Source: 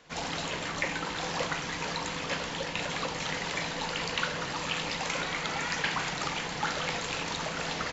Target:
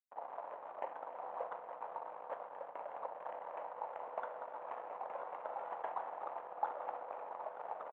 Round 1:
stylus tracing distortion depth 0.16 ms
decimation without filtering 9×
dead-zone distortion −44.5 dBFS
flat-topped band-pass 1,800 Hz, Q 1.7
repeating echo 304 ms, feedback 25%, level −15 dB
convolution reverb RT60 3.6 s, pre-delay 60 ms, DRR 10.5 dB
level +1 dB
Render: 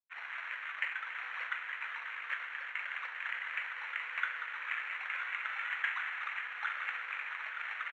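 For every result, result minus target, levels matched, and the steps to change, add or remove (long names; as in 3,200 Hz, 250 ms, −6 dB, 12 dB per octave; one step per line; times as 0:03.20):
2,000 Hz band +15.5 dB; dead-zone distortion: distortion −10 dB
change: flat-topped band-pass 750 Hz, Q 1.7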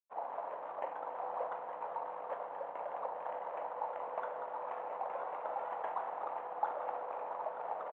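dead-zone distortion: distortion −10 dB
change: dead-zone distortion −35 dBFS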